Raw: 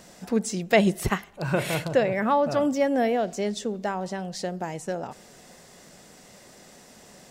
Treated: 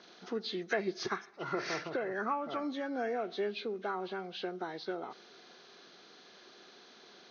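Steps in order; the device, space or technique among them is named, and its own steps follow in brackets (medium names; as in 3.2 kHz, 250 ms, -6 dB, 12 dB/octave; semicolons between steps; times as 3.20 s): hearing aid with frequency lowering (knee-point frequency compression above 1.2 kHz 1.5:1; compression 2.5:1, threshold -25 dBFS, peak gain reduction 8 dB; cabinet simulation 360–6200 Hz, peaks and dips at 370 Hz +7 dB, 570 Hz -9 dB, 890 Hz -4 dB, 1.3 kHz +5 dB, 2.9 kHz -4 dB, 5.9 kHz +4 dB); trim -4 dB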